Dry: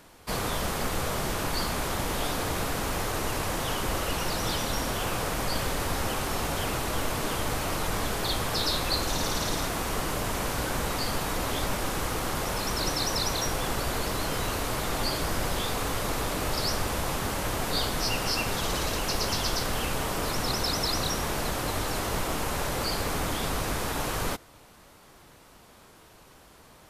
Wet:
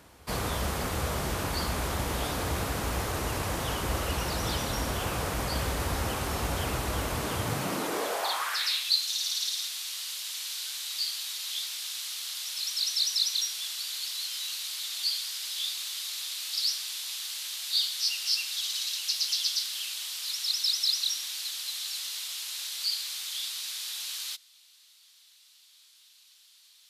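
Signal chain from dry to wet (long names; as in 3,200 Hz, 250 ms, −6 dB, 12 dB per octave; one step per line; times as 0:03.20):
high-pass filter sweep 60 Hz → 3,800 Hz, 0:07.24–0:08.91
level −2 dB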